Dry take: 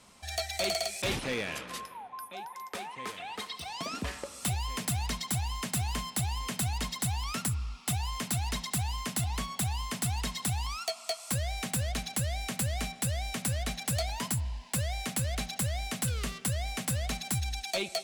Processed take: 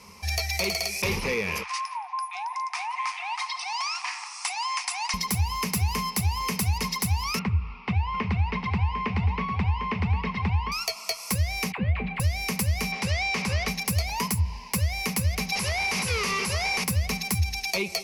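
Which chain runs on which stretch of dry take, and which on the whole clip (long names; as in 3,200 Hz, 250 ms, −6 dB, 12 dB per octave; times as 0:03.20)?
0:01.63–0:05.14: linear-phase brick-wall band-pass 690–10,000 Hz + feedback echo with a low-pass in the loop 173 ms, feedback 68%, low-pass 2,500 Hz, level −14 dB
0:07.39–0:10.72: low-pass filter 2,900 Hz 24 dB per octave + single-tap delay 751 ms −8 dB
0:11.72–0:12.20: inverse Chebyshev low-pass filter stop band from 5,400 Hz + all-pass dispersion lows, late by 66 ms, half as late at 630 Hz
0:12.92–0:13.68: mid-hump overdrive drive 18 dB, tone 7,000 Hz, clips at −25 dBFS + high-frequency loss of the air 76 metres
0:15.52–0:16.84: downward compressor 2.5 to 1, threshold −39 dBFS + mid-hump overdrive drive 34 dB, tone 5,700 Hz, clips at −25 dBFS + elliptic low-pass filter 11,000 Hz, stop band 60 dB
whole clip: EQ curve with evenly spaced ripples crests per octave 0.83, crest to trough 12 dB; downward compressor, threshold −30 dBFS; parametric band 93 Hz +5.5 dB 0.64 octaves; level +6.5 dB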